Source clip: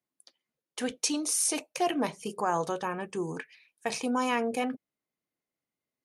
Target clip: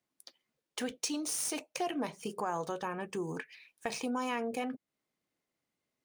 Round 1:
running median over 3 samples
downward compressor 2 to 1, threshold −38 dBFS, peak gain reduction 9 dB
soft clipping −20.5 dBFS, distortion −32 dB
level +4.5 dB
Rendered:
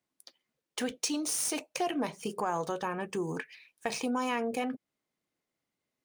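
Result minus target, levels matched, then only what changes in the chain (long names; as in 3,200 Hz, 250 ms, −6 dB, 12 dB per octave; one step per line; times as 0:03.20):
downward compressor: peak gain reduction −3 dB
change: downward compressor 2 to 1, threshold −44.5 dBFS, peak gain reduction 12 dB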